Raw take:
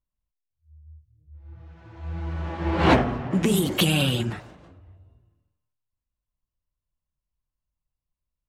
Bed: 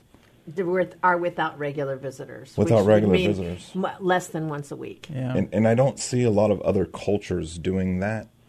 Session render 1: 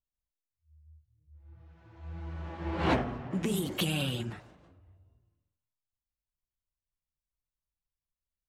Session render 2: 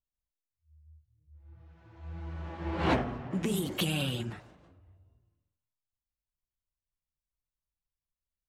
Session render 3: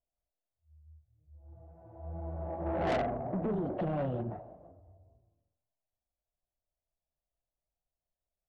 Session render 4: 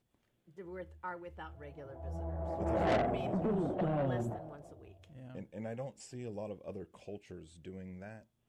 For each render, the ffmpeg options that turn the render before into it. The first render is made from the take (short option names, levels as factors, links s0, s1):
-af "volume=0.335"
-af anull
-af "lowpass=f=670:t=q:w=5.1,asoftclip=type=tanh:threshold=0.0422"
-filter_complex "[1:a]volume=0.075[s0];[0:a][s0]amix=inputs=2:normalize=0"